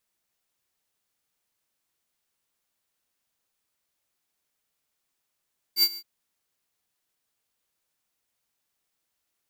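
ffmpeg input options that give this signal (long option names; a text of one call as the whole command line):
ffmpeg -f lavfi -i "aevalsrc='0.126*(2*lt(mod(4660*t,1),0.5)-1)':duration=0.269:sample_rate=44100,afade=type=in:duration=0.069,afade=type=out:start_time=0.069:duration=0.053:silence=0.106,afade=type=out:start_time=0.21:duration=0.059" out.wav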